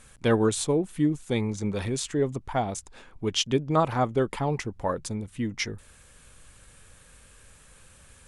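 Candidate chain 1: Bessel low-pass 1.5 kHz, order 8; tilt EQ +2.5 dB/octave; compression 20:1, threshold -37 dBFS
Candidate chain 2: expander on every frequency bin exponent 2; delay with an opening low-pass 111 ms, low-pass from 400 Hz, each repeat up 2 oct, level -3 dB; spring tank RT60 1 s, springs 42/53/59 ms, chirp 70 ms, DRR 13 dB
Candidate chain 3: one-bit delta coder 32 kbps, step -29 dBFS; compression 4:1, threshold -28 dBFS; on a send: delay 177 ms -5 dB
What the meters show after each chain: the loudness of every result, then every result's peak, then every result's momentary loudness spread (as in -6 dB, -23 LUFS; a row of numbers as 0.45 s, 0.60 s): -43.5 LUFS, -29.0 LUFS, -32.5 LUFS; -25.0 dBFS, -11.5 dBFS, -17.5 dBFS; 20 LU, 13 LU, 5 LU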